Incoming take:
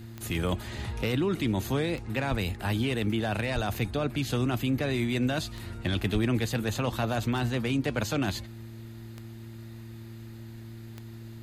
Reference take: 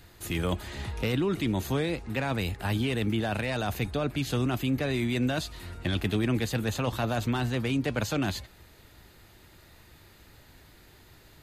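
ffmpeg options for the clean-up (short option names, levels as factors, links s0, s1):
-filter_complex "[0:a]adeclick=t=4,bandreject=f=113.3:t=h:w=4,bandreject=f=226.6:t=h:w=4,bandreject=f=339.9:t=h:w=4,asplit=3[s0][s1][s2];[s0]afade=t=out:st=2.3:d=0.02[s3];[s1]highpass=f=140:w=0.5412,highpass=f=140:w=1.3066,afade=t=in:st=2.3:d=0.02,afade=t=out:st=2.42:d=0.02[s4];[s2]afade=t=in:st=2.42:d=0.02[s5];[s3][s4][s5]amix=inputs=3:normalize=0,asplit=3[s6][s7][s8];[s6]afade=t=out:st=3.54:d=0.02[s9];[s7]highpass=f=140:w=0.5412,highpass=f=140:w=1.3066,afade=t=in:st=3.54:d=0.02,afade=t=out:st=3.66:d=0.02[s10];[s8]afade=t=in:st=3.66:d=0.02[s11];[s9][s10][s11]amix=inputs=3:normalize=0,asplit=3[s12][s13][s14];[s12]afade=t=out:st=6.13:d=0.02[s15];[s13]highpass=f=140:w=0.5412,highpass=f=140:w=1.3066,afade=t=in:st=6.13:d=0.02,afade=t=out:st=6.25:d=0.02[s16];[s14]afade=t=in:st=6.25:d=0.02[s17];[s15][s16][s17]amix=inputs=3:normalize=0"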